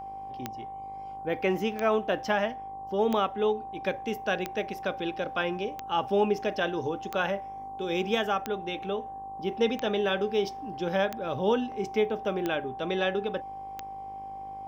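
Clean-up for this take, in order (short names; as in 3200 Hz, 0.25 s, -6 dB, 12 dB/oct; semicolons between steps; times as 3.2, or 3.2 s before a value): de-click; de-hum 51.2 Hz, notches 22; notch 780 Hz, Q 30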